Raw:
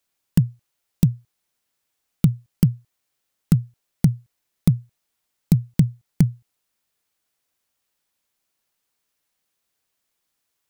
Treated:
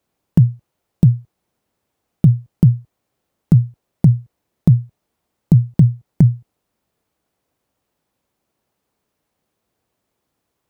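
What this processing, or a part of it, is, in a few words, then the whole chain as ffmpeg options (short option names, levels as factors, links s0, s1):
mastering chain: -af "highpass=43,equalizer=f=1600:t=o:w=0.77:g=-2,acompressor=threshold=0.158:ratio=2,tiltshelf=f=1400:g=9,alimiter=level_in=2.24:limit=0.891:release=50:level=0:latency=1,volume=0.891"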